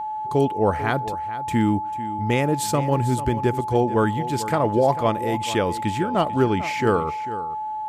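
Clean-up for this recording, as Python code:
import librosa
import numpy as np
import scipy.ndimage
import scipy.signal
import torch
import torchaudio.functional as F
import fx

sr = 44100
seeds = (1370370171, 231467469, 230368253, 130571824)

y = fx.notch(x, sr, hz=860.0, q=30.0)
y = fx.fix_echo_inverse(y, sr, delay_ms=444, level_db=-14.0)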